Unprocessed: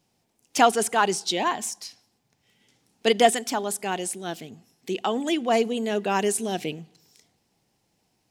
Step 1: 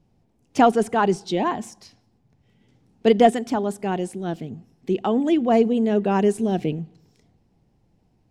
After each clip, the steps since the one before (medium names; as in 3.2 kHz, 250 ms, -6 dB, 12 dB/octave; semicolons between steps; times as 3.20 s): tilt EQ -4 dB/octave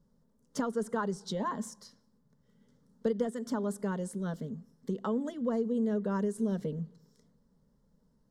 compression 8:1, threshold -23 dBFS, peak gain reduction 14 dB; static phaser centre 500 Hz, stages 8; trim -2.5 dB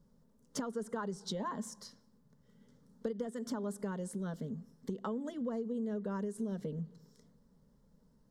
compression 3:1, threshold -39 dBFS, peak gain reduction 10.5 dB; trim +2 dB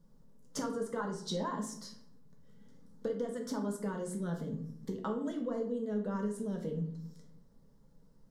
reverberation RT60 0.55 s, pre-delay 6 ms, DRR 1.5 dB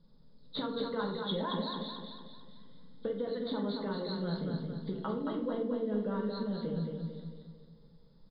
knee-point frequency compression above 3.2 kHz 4:1; feedback delay 223 ms, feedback 46%, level -4.5 dB